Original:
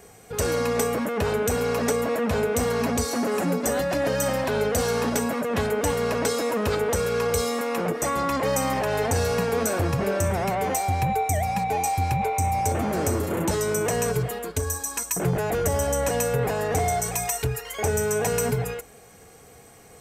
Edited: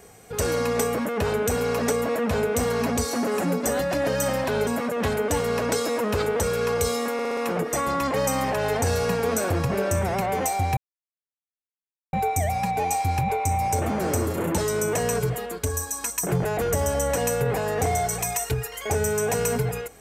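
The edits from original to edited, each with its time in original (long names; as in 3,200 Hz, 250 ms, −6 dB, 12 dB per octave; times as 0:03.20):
0:04.67–0:05.20: remove
0:07.66: stutter 0.06 s, 5 plays
0:11.06: splice in silence 1.36 s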